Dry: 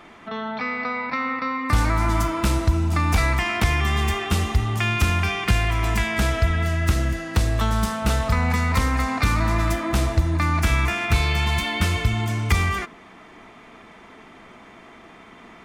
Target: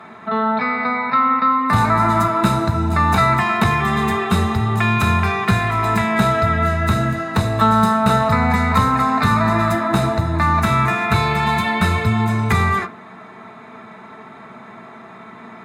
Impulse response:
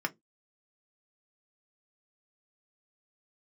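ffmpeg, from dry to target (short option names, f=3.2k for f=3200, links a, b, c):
-filter_complex "[1:a]atrim=start_sample=2205,asetrate=32193,aresample=44100[a];[0:a][a]afir=irnorm=-1:irlink=0,volume=-1dB"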